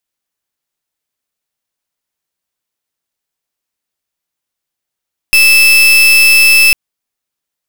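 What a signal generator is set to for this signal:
pulse wave 2,630 Hz, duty 36% −6 dBFS 1.40 s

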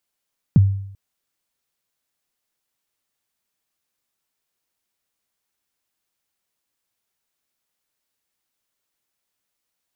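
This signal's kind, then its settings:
synth kick length 0.39 s, from 210 Hz, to 98 Hz, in 26 ms, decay 0.70 s, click off, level −6 dB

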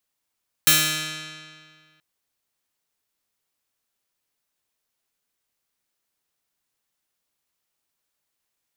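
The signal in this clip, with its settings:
Karplus-Strong string D#3, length 1.33 s, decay 1.97 s, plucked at 0.42, bright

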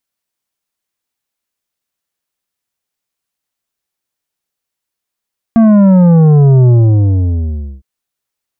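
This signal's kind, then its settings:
bass drop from 230 Hz, over 2.26 s, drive 9 dB, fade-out 1.13 s, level −4.5 dB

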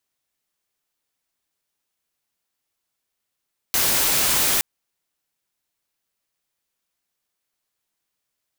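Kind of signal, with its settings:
noise white, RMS −19.5 dBFS 0.87 s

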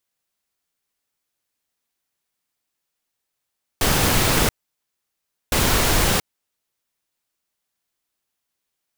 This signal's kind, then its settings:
noise bursts pink, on 0.68 s, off 1.03 s, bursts 2, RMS −18 dBFS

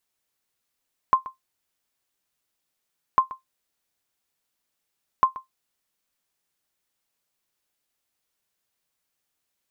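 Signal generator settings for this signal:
ping with an echo 1,050 Hz, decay 0.14 s, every 2.05 s, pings 3, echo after 0.13 s, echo −18 dB −8 dBFS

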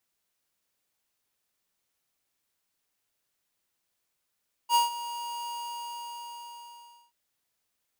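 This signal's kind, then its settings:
note with an ADSR envelope square 948 Hz, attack 61 ms, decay 144 ms, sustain −15.5 dB, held 0.79 s, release 1,640 ms −20.5 dBFS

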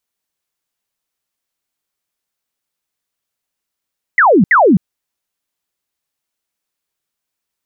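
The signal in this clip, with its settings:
repeated falling chirps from 2,100 Hz, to 160 Hz, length 0.26 s sine, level −5.5 dB, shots 2, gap 0.07 s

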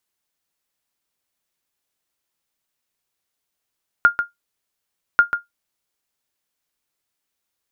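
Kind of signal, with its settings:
ping with an echo 1,410 Hz, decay 0.15 s, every 1.14 s, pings 2, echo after 0.14 s, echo −8.5 dB −3.5 dBFS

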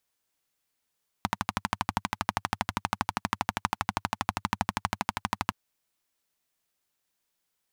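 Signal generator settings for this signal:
pulse-train model of a single-cylinder engine, steady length 4.27 s, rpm 1,500, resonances 100/200/890 Hz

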